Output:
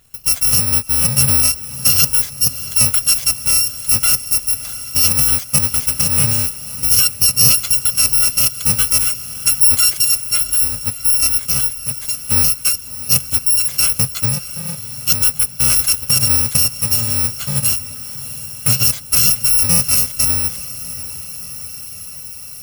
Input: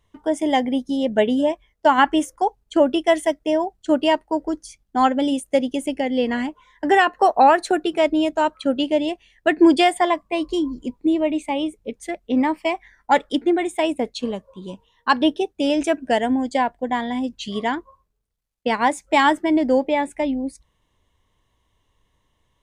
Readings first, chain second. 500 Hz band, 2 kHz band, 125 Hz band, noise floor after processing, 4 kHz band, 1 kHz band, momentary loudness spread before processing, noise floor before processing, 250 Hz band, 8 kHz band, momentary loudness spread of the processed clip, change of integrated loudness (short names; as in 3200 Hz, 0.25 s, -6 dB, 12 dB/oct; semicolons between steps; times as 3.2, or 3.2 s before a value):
-17.0 dB, -1.5 dB, n/a, -32 dBFS, +12.0 dB, -14.5 dB, 11 LU, -69 dBFS, -12.0 dB, +28.0 dB, 14 LU, +8.0 dB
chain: FFT order left unsorted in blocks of 128 samples; in parallel at -1.5 dB: negative-ratio compressor -19 dBFS; on the sum: bell 130 Hz +11.5 dB 0.52 oct; diffused feedback echo 0.691 s, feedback 61%, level -14.5 dB; mismatched tape noise reduction encoder only